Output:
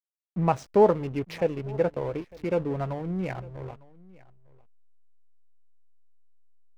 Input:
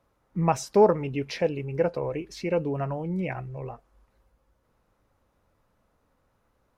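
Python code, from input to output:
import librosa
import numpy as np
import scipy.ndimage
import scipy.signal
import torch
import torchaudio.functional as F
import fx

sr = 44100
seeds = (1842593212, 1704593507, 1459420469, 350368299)

y = fx.high_shelf(x, sr, hz=5400.0, db=-9.5)
y = fx.backlash(y, sr, play_db=-34.5)
y = y + 10.0 ** (-23.0 / 20.0) * np.pad(y, (int(903 * sr / 1000.0), 0))[:len(y)]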